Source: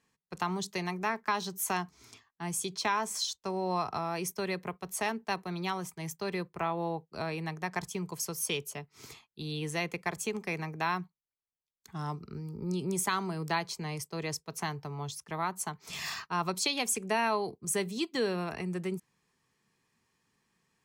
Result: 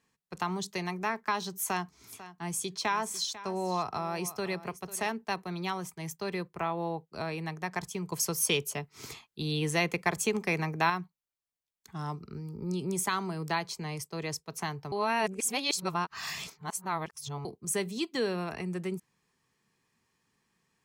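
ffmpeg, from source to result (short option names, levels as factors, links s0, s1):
-filter_complex "[0:a]asettb=1/sr,asplit=3[s0][s1][s2];[s0]atrim=end=1.544[s3];[s1]atrim=start=1.54:end=5.1,asetpts=PTS-STARTPTS,afade=t=in:d=0.004:c=qsin,afade=t=out:st=3.556:d=0.004:c=qsin,aecho=1:1:496:0.168,atrim=end_sample=156996[s4];[s2]atrim=start=5.096[s5];[s3][s4]acrossfade=d=0.004:c1=hsin:c2=qsin[s6];[s6][s5]acrossfade=d=0.004:c1=qsin:c2=hsin,asettb=1/sr,asplit=3[s7][s8][s9];[s7]atrim=end=8.124[s10];[s8]atrim=start=8.12:end=10.9,asetpts=PTS-STARTPTS,afade=t=in:d=0.004:c=qsin,afade=t=out:st=2.776:d=0.004:c=qsin,acontrast=30[s11];[s9]atrim=start=10.896[s12];[s10][s11]acrossfade=d=0.004:c1=hsin:c2=qsin[s13];[s13][s12]acrossfade=d=0.004:c1=qsin:c2=hsin,asplit=3[s14][s15][s16];[s14]atrim=end=14.922[s17];[s15]atrim=start=14.918:end=17.452,asetpts=PTS-STARTPTS,areverse[s18];[s16]atrim=start=17.448[s19];[s17][s18]acrossfade=d=0.004:c1=hsin:c2=hsin[s20];[s20][s19]acrossfade=d=0.004:c1=hsin:c2=hsin"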